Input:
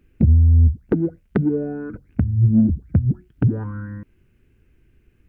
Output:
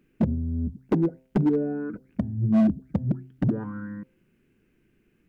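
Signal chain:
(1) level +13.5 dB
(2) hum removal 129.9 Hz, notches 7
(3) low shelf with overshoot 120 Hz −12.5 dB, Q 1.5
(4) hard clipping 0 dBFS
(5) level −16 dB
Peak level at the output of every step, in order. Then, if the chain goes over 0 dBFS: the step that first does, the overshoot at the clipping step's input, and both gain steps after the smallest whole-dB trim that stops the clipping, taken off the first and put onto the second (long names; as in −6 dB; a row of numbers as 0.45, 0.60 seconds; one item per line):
+8.0, +8.0, +8.0, 0.0, −16.0 dBFS
step 1, 8.0 dB
step 1 +5.5 dB, step 5 −8 dB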